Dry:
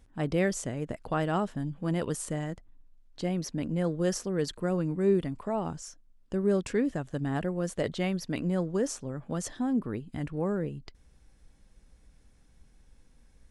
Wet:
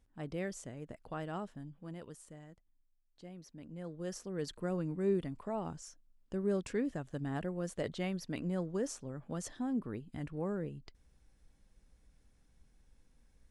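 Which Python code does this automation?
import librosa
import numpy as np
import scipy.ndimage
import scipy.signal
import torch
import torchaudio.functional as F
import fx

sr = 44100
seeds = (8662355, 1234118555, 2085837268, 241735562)

y = fx.gain(x, sr, db=fx.line((1.44, -12.0), (2.24, -19.5), (3.5, -19.5), (4.56, -7.0)))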